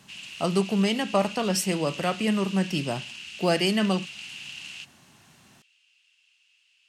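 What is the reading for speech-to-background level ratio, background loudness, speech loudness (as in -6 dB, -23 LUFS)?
12.0 dB, -38.0 LUFS, -26.0 LUFS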